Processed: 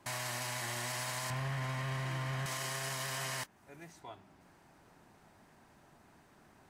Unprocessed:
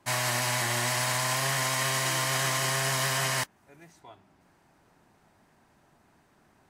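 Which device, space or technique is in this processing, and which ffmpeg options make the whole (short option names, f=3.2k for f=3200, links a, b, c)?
stacked limiters: -filter_complex "[0:a]asettb=1/sr,asplit=3[a][b][c];[a]atrim=end=1.304[d];[b]atrim=start=1.3:end=2.46,asetpts=PTS-STARTPTS,afade=t=in:d=0.004:c=qsin,afade=t=out:st=1.156:d=0.004:c=qsin,bass=f=250:g=11,treble=f=4k:g=-14[e];[c]atrim=start=2.456[f];[d][e]acrossfade=d=0.004:c1=hsin:c2=qsin[g];[g][f]acrossfade=d=0.004:c1=qsin:c2=hsin,alimiter=limit=-22.5dB:level=0:latency=1,alimiter=level_in=2dB:limit=-24dB:level=0:latency=1:release=300,volume=-2dB,alimiter=level_in=7dB:limit=-24dB:level=0:latency=1:release=22,volume=-7dB,volume=1dB"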